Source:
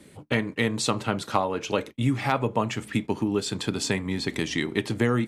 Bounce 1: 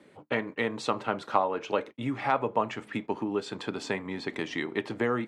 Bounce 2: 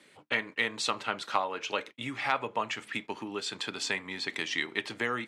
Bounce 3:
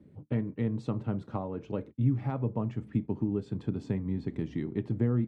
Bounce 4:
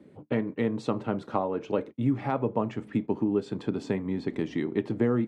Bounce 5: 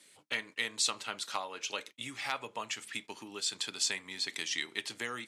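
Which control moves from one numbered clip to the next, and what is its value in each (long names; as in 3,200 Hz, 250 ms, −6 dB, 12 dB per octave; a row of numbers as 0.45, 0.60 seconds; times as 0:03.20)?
resonant band-pass, frequency: 860, 2,200, 100, 320, 5,900 Hertz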